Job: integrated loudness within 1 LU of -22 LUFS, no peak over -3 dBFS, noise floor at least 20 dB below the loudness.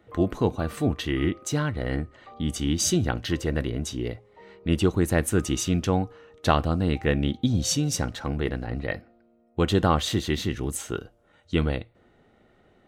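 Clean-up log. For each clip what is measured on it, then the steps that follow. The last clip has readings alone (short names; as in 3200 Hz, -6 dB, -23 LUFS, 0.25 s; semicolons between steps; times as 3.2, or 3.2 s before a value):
loudness -26.5 LUFS; peak -5.0 dBFS; loudness target -22.0 LUFS
-> gain +4.5 dB; limiter -3 dBFS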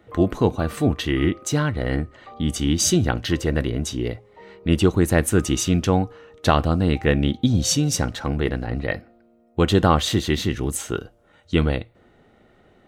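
loudness -22.0 LUFS; peak -3.0 dBFS; noise floor -57 dBFS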